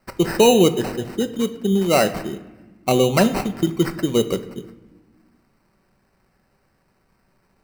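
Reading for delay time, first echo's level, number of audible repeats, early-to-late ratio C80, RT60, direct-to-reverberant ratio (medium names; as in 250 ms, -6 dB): no echo, no echo, no echo, 16.0 dB, 1.2 s, 8.0 dB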